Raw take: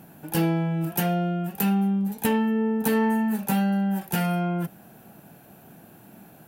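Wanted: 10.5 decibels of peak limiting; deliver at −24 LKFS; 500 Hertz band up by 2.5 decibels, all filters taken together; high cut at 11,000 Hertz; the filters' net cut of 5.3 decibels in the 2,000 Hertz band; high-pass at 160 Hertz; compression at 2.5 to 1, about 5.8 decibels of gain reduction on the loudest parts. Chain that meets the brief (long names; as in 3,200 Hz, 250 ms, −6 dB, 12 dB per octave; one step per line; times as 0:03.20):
high-pass filter 160 Hz
low-pass filter 11,000 Hz
parametric band 500 Hz +3.5 dB
parametric band 2,000 Hz −7 dB
downward compressor 2.5 to 1, threshold −27 dBFS
level +9.5 dB
brickwall limiter −16.5 dBFS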